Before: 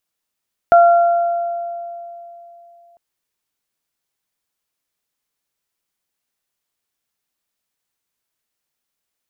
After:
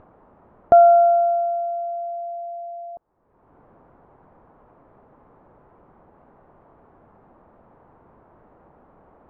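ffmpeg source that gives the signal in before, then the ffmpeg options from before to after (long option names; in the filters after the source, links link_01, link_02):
-f lavfi -i "aevalsrc='0.562*pow(10,-3*t/3.15)*sin(2*PI*688*t)+0.188*pow(10,-3*t/1.64)*sin(2*PI*1376*t)':duration=2.25:sample_rate=44100"
-af "lowpass=frequency=1000:width=0.5412,lowpass=frequency=1000:width=1.3066,acompressor=mode=upward:threshold=-23dB:ratio=2.5"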